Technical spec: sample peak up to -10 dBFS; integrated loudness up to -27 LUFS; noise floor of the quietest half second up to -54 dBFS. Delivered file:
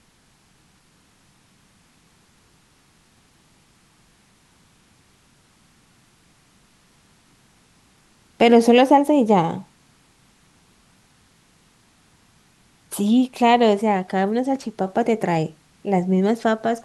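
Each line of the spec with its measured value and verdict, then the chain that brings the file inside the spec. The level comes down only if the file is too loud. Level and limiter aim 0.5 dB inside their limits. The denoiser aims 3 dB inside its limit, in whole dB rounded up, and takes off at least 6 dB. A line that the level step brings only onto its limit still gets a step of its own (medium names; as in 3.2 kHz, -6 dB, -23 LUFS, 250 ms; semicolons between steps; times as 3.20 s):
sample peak -3.5 dBFS: fail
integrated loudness -18.5 LUFS: fail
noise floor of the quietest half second -58 dBFS: pass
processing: trim -9 dB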